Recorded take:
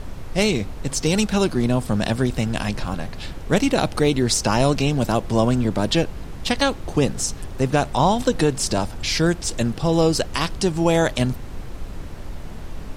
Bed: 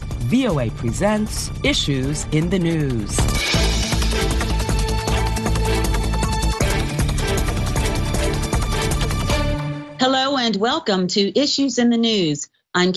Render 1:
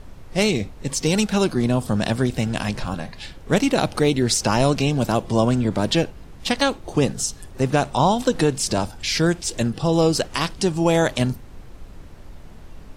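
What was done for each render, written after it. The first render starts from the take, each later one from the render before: noise print and reduce 8 dB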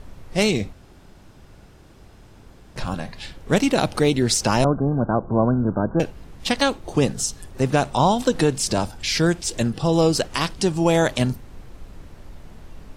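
0.73–2.76 room tone; 4.64–6 Chebyshev low-pass 1600 Hz, order 10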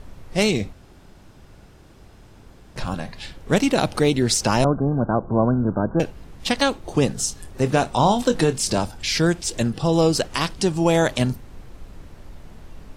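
7.19–8.79 doubler 25 ms -11 dB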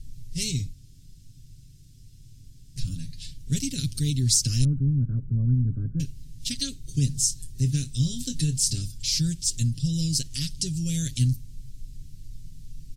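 Chebyshev band-stop 120–5600 Hz, order 2; comb 7.4 ms, depth 65%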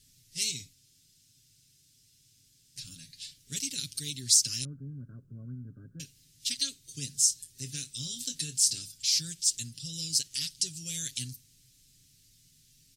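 HPF 1300 Hz 6 dB/oct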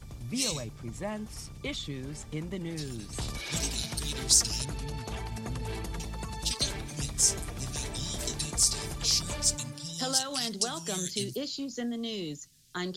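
add bed -17.5 dB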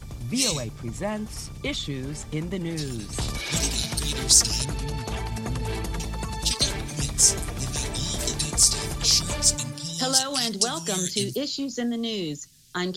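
gain +6.5 dB; limiter -3 dBFS, peak gain reduction 2 dB

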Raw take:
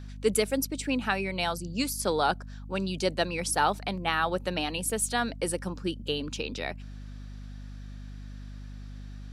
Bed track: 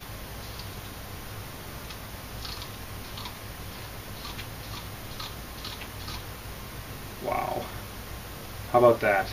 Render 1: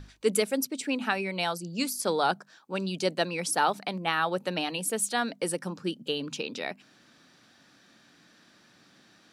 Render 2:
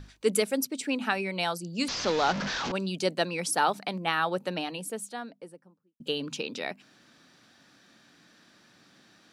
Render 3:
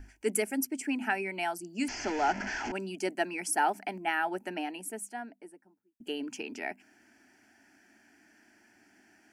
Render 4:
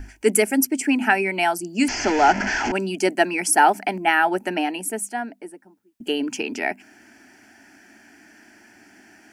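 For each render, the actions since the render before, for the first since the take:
notches 50/100/150/200/250 Hz
1.88–2.72 delta modulation 32 kbps, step -25.5 dBFS; 4.14–6 studio fade out
fixed phaser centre 770 Hz, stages 8
gain +12 dB; limiter -3 dBFS, peak gain reduction 1 dB

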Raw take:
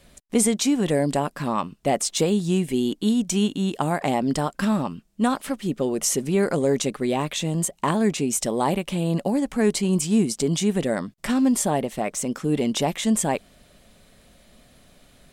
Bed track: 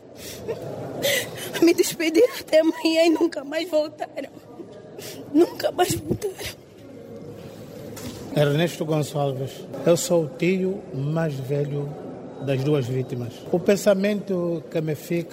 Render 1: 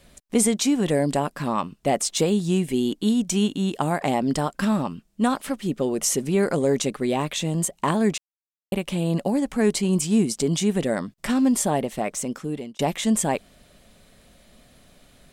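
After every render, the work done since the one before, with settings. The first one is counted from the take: 8.18–8.72 mute; 11.91–12.79 fade out equal-power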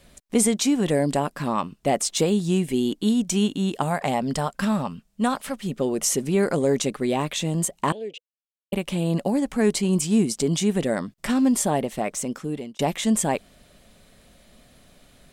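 3.83–5.75 bell 320 Hz -13.5 dB 0.31 oct; 7.92–8.73 double band-pass 1200 Hz, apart 2.6 oct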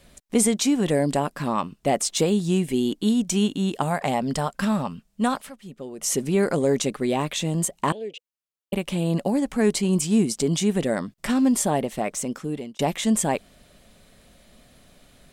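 5.36–6.13 dip -12 dB, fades 0.15 s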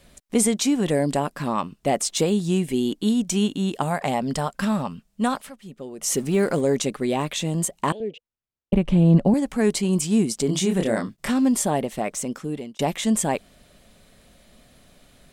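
6.07–6.61 G.711 law mismatch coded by mu; 8–9.34 RIAA curve playback; 10.46–11.3 doubler 27 ms -4 dB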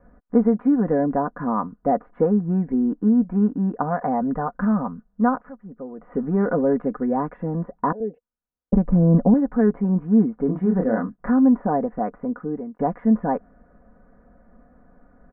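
steep low-pass 1600 Hz 48 dB/oct; comb 4.1 ms, depth 62%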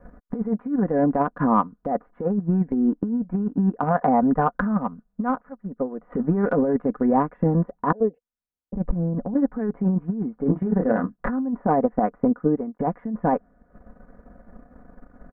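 transient shaper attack +7 dB, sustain -10 dB; negative-ratio compressor -21 dBFS, ratio -1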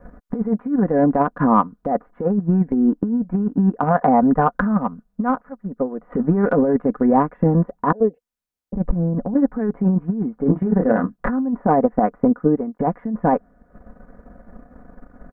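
gain +4 dB; limiter -3 dBFS, peak gain reduction 1.5 dB

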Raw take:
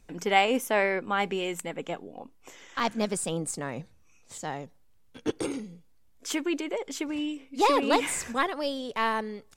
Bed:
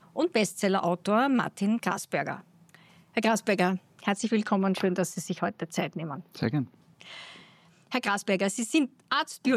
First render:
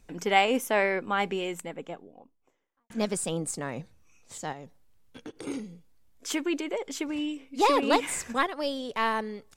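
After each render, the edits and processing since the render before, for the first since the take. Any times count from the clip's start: 1.14–2.9 studio fade out; 4.52–5.47 compressor, threshold -38 dBFS; 7.81–8.65 transient shaper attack +1 dB, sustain -5 dB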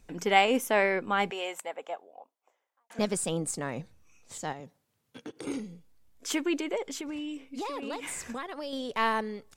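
1.3–2.99 resonant high-pass 680 Hz, resonance Q 1.9; 4.6–5.44 HPF 98 Hz 24 dB/oct; 6.85–8.73 compressor, threshold -33 dBFS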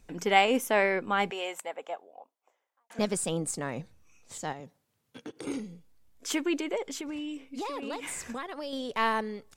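nothing audible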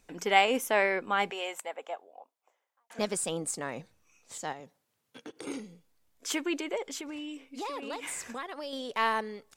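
low shelf 210 Hz -11 dB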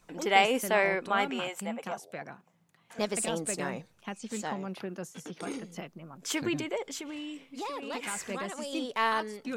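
add bed -12 dB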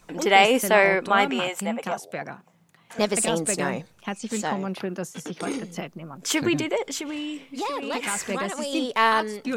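gain +8 dB; limiter -2 dBFS, peak gain reduction 3 dB

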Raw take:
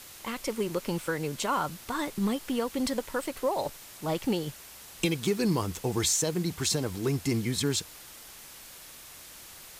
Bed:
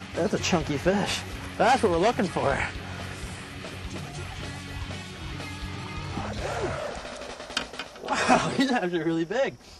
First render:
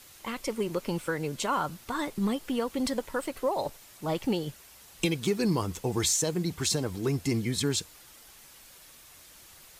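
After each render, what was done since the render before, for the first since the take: denoiser 6 dB, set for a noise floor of -48 dBFS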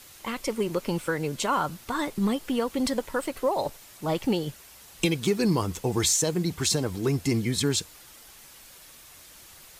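gain +3 dB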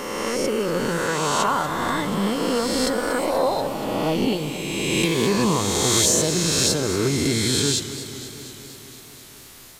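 spectral swells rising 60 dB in 2.19 s; warbling echo 0.24 s, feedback 70%, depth 102 cents, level -13 dB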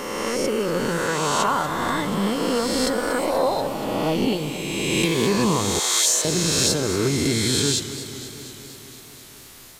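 5.79–6.25 HPF 870 Hz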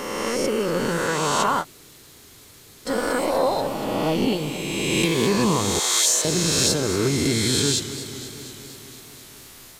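1.62–2.88 room tone, crossfade 0.06 s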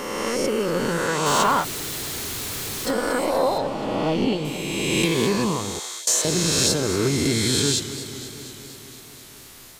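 1.26–2.91 zero-crossing step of -25 dBFS; 3.58–4.45 air absorption 67 m; 5.19–6.07 fade out, to -21 dB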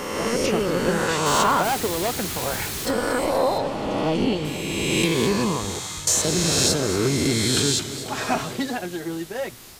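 add bed -3.5 dB

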